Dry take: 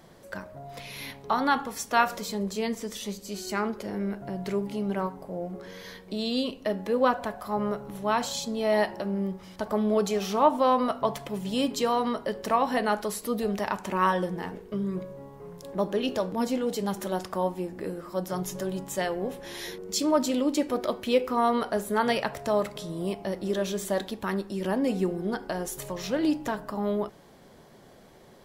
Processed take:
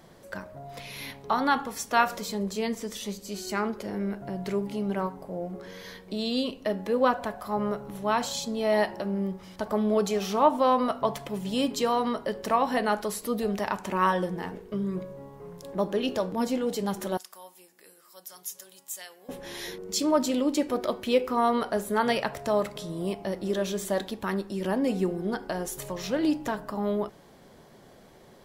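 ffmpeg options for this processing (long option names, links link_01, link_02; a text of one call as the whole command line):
ffmpeg -i in.wav -filter_complex "[0:a]asettb=1/sr,asplit=3[link_01][link_02][link_03];[link_01]atrim=end=17.174[link_04];[link_02]atrim=start=17.17:end=19.29,asetpts=PTS-STARTPTS,afade=type=in:duration=0.004:curve=qsin,afade=type=out:start_time=2.116:duration=0.004:curve=qsin,aderivative[link_05];[link_03]atrim=start=19.286[link_06];[link_04][link_05]acrossfade=duration=0.004:curve1=hsin:curve2=qsin[link_07];[link_07][link_06]acrossfade=duration=0.004:curve1=qsin:curve2=hsin" out.wav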